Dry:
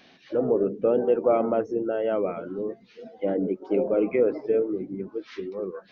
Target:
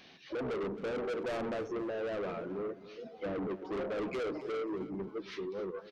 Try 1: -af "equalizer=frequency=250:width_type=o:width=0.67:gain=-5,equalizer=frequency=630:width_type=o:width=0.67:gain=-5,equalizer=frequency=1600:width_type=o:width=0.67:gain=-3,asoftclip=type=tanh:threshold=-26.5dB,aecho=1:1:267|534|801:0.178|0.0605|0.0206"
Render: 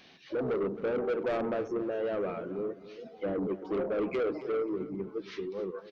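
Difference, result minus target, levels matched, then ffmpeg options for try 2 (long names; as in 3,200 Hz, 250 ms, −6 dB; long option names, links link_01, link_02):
soft clipping: distortion −4 dB
-af "equalizer=frequency=250:width_type=o:width=0.67:gain=-5,equalizer=frequency=630:width_type=o:width=0.67:gain=-5,equalizer=frequency=1600:width_type=o:width=0.67:gain=-3,asoftclip=type=tanh:threshold=-33.5dB,aecho=1:1:267|534|801:0.178|0.0605|0.0206"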